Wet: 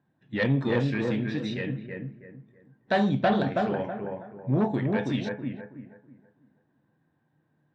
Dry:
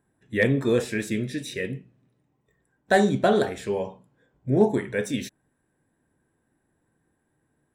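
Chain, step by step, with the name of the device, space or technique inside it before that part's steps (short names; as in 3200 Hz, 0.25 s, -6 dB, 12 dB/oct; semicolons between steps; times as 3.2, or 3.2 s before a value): analogue delay pedal into a guitar amplifier (analogue delay 0.324 s, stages 4096, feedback 31%, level -4 dB; tube stage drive 15 dB, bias 0.25; speaker cabinet 110–4400 Hz, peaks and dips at 150 Hz +6 dB, 410 Hz -8 dB, 1300 Hz -3 dB, 2100 Hz -4 dB)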